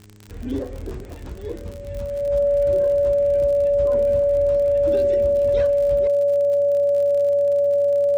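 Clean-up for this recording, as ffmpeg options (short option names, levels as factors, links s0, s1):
-af "adeclick=t=4,bandreject=f=103.4:t=h:w=4,bandreject=f=206.8:t=h:w=4,bandreject=f=310.2:t=h:w=4,bandreject=f=413.6:t=h:w=4,bandreject=f=570:w=30,agate=range=0.0891:threshold=0.0501"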